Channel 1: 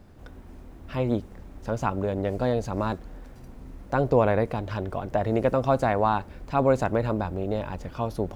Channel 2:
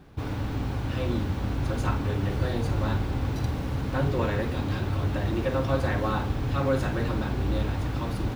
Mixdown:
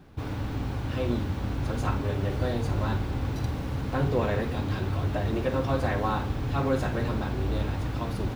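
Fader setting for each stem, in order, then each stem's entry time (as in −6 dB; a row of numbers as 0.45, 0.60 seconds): −10.5, −1.5 decibels; 0.00, 0.00 seconds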